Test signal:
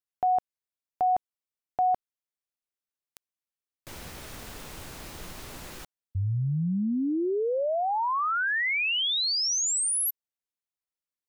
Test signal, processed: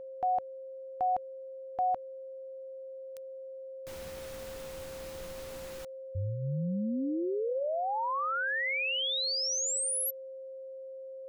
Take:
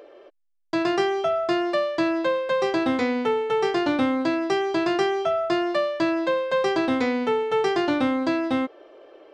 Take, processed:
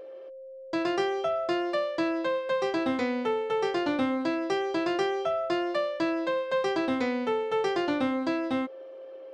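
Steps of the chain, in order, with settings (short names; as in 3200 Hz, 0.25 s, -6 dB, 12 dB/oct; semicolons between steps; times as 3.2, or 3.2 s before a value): dynamic EQ 120 Hz, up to -5 dB, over -58 dBFS, Q 7.8; whine 530 Hz -36 dBFS; gain -5 dB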